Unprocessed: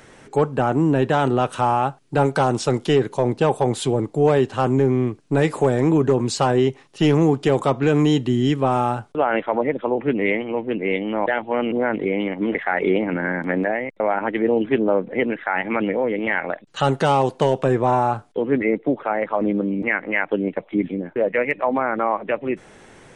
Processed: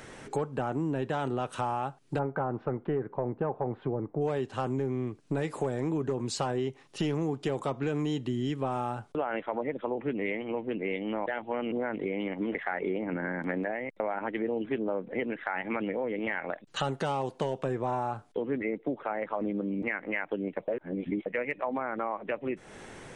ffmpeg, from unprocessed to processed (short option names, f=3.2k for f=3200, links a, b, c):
-filter_complex "[0:a]asplit=3[a][b][c];[a]afade=t=out:st=2.18:d=0.02[d];[b]lowpass=f=1.7k:w=0.5412,lowpass=f=1.7k:w=1.3066,afade=t=in:st=2.18:d=0.02,afade=t=out:st=4.2:d=0.02[e];[c]afade=t=in:st=4.2:d=0.02[f];[d][e][f]amix=inputs=3:normalize=0,asettb=1/sr,asplit=3[g][h][i];[g]atrim=end=12.774[j];[h]atrim=start=12.77:end=13.39,asetpts=PTS-STARTPTS,afade=t=in:d=0.004:c=qsin,afade=t=out:st=0.616:d=0.004:c=qsin,lowpass=f=2.2k:p=1[k];[i]atrim=start=13.386[l];[j][k]acrossfade=d=0.004:c1=hsin:c2=qsin[m];[m][l]acrossfade=d=0.004:c1=qsin:c2=hsin,asplit=3[n][o][p];[n]atrim=end=20.682[q];[o]atrim=start=20.678:end=21.262,asetpts=PTS-STARTPTS,areverse[r];[p]atrim=start=21.258[s];[q][r]acrossfade=d=0.004:c1=hsin:c2=hsin[t];[t][s]acrossfade=d=0.004:c1=hsin:c2=hsin,acompressor=threshold=-32dB:ratio=3"